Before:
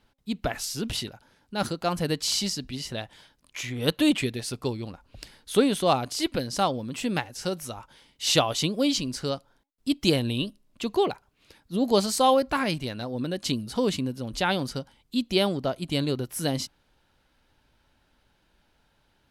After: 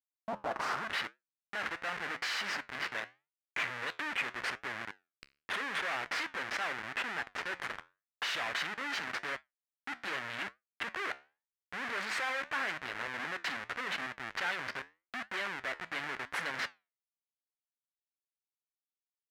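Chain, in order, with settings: Schmitt trigger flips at -32 dBFS; flange 0.85 Hz, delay 6.7 ms, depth 8.1 ms, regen -75%; band-pass sweep 720 Hz -> 1.8 kHz, 0.23–1.00 s; trim +9 dB

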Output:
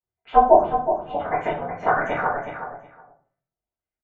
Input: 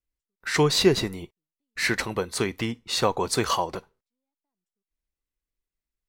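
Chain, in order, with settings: gliding tape speed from 173% -> 129%; high-pass 120 Hz 12 dB/octave; comb 1.4 ms, depth 98%; de-hum 166.4 Hz, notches 13; AM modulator 280 Hz, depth 85%; LFO low-pass sine 1.6 Hz 760–2000 Hz; spectral gate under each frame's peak -30 dB strong; feedback delay 368 ms, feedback 16%, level -9 dB; simulated room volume 35 m³, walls mixed, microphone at 1.6 m; trim -9 dB

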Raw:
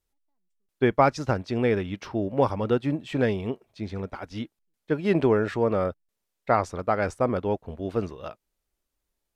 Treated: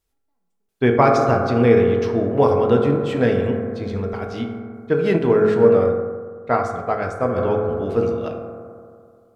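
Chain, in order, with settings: reverberation RT60 2.2 s, pre-delay 3 ms, DRR 0.5 dB; 5.16–7.38 s: upward expansion 1.5:1, over -28 dBFS; trim +3.5 dB

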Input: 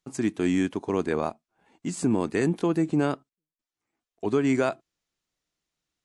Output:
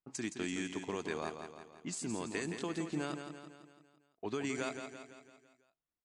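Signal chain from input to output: pre-emphasis filter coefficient 0.9; level-controlled noise filter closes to 1 kHz, open at -37.5 dBFS; compression, threshold -41 dBFS, peak gain reduction 7.5 dB; distance through air 68 m; on a send: feedback delay 168 ms, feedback 53%, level -7.5 dB; on the sum: trim +8 dB

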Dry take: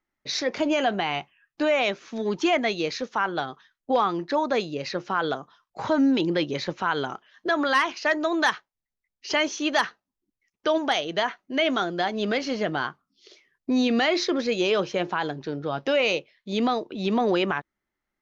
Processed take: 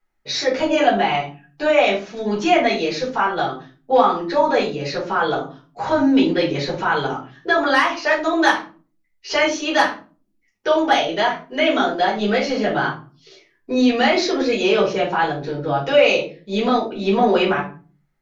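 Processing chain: simulated room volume 200 m³, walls furnished, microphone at 4.7 m; trim -3 dB

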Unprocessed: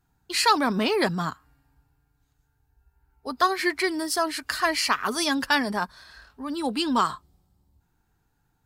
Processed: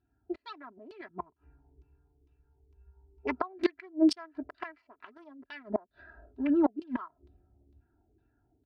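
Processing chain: local Wiener filter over 41 samples; inverted gate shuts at -20 dBFS, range -32 dB; LFO low-pass saw down 2.2 Hz 350–4000 Hz; 1.10–3.37 s: rippled EQ curve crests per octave 0.77, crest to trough 12 dB; level rider gain up to 5 dB; high-pass 60 Hz; bass shelf 390 Hz -4.5 dB; comb 3 ms, depth 82%

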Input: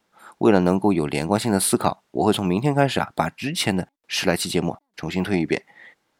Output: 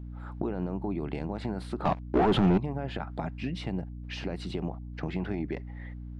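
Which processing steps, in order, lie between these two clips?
3.08–4.41 s: dynamic bell 1.5 kHz, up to -5 dB, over -34 dBFS, Q 0.93; peak limiter -12.5 dBFS, peak gain reduction 10.5 dB; compression, threshold -28 dBFS, peak gain reduction 10.5 dB; 1.85–2.58 s: waveshaping leveller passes 5; hum 60 Hz, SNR 10 dB; tape spacing loss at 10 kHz 30 dB

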